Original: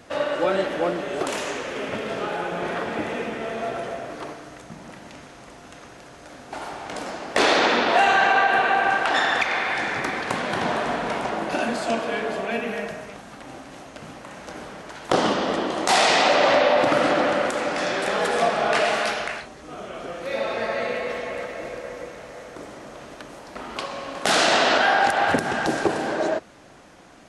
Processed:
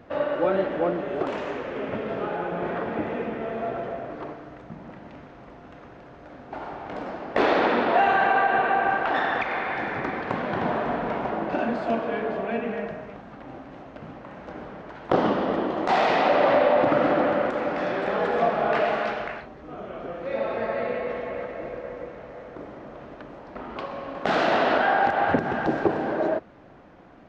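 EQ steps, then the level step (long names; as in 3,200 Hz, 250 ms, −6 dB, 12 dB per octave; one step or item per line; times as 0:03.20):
head-to-tape spacing loss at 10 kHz 38 dB
+1.5 dB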